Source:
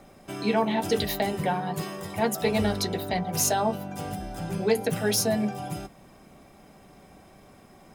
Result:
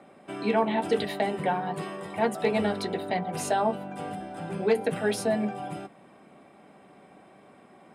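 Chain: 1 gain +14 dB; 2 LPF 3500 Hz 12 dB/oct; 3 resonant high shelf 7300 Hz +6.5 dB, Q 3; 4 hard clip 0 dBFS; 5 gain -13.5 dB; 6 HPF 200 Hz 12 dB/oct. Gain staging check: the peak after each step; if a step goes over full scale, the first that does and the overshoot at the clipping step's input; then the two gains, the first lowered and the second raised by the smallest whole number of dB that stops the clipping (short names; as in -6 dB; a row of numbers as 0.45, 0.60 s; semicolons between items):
+3.0, +3.0, +3.0, 0.0, -13.5, -12.0 dBFS; step 1, 3.0 dB; step 1 +11 dB, step 5 -10.5 dB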